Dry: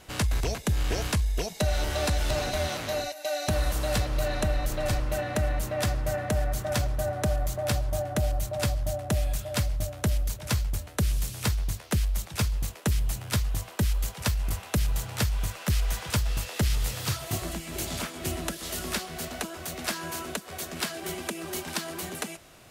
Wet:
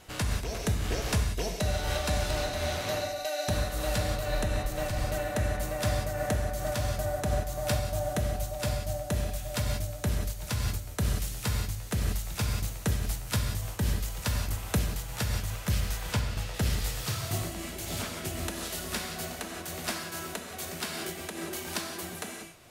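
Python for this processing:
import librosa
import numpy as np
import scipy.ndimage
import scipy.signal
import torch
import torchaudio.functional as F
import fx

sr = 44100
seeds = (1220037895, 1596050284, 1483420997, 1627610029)

y = fx.high_shelf(x, sr, hz=7000.0, db=-9.5, at=(16.0, 16.54))
y = fx.rev_gated(y, sr, seeds[0], gate_ms=210, shape='flat', drr_db=2.0)
y = fx.am_noise(y, sr, seeds[1], hz=5.7, depth_pct=55)
y = y * 10.0 ** (-1.0 / 20.0)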